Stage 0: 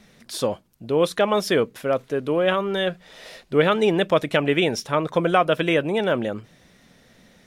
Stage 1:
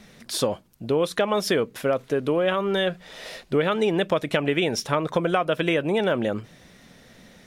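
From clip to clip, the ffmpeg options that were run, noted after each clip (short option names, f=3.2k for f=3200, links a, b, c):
-af "acompressor=threshold=-23dB:ratio=4,volume=3.5dB"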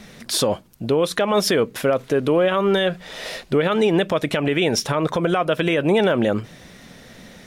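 -af "alimiter=limit=-16.5dB:level=0:latency=1:release=68,volume=7dB"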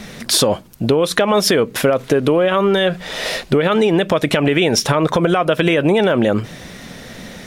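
-af "acompressor=threshold=-20dB:ratio=6,volume=9dB"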